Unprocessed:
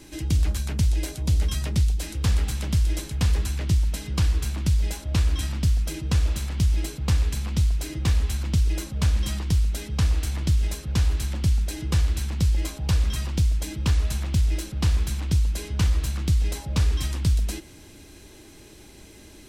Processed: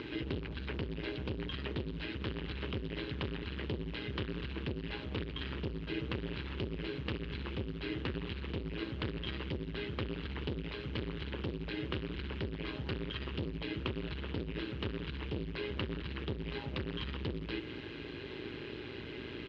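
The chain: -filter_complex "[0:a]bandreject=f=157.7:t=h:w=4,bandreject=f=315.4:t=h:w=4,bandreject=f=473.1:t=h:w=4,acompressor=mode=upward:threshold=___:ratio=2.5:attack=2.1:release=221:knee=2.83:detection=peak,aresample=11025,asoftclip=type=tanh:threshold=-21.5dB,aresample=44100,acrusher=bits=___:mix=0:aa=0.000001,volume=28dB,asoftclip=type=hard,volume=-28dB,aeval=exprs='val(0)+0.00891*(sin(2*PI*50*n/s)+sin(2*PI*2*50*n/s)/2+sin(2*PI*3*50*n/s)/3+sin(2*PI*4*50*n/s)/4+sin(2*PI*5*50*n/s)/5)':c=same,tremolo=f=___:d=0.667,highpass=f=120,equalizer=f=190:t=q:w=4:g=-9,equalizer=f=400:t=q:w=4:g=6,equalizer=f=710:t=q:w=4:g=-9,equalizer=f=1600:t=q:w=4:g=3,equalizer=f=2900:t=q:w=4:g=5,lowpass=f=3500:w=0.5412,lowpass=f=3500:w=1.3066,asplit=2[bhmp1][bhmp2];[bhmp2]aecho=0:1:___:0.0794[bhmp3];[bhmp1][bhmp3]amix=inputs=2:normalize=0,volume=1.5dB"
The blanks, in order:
-31dB, 7, 120, 164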